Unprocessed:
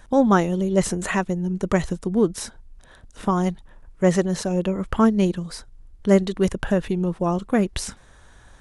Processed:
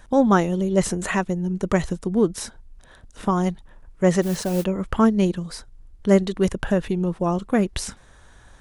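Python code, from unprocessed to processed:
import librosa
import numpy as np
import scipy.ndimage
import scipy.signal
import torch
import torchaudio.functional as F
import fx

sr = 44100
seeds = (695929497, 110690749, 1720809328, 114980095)

y = fx.mod_noise(x, sr, seeds[0], snr_db=17, at=(4.22, 4.63), fade=0.02)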